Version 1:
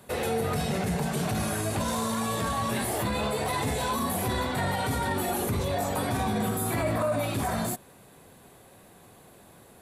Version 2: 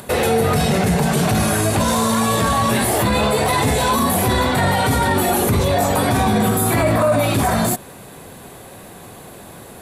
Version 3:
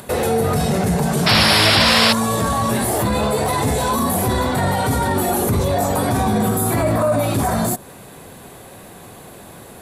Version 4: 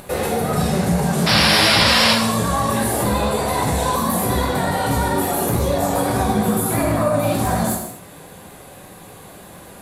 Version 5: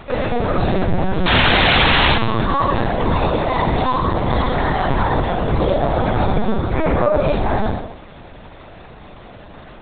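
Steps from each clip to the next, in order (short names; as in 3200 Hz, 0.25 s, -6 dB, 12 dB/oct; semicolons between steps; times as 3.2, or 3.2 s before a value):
in parallel at +3 dB: limiter -26.5 dBFS, peak gain reduction 9.5 dB; on the sum: upward compressor, threshold -44 dBFS; gain +7 dB
dynamic EQ 2600 Hz, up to -6 dB, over -37 dBFS, Q 0.91; painted sound noise, 1.26–2.13, 490–5600 Hz -14 dBFS; gain -1 dB
vibrato 8.6 Hz 53 cents; non-linear reverb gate 0.27 s falling, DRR -1 dB; gain -4 dB
LPC vocoder at 8 kHz pitch kept; gain +2.5 dB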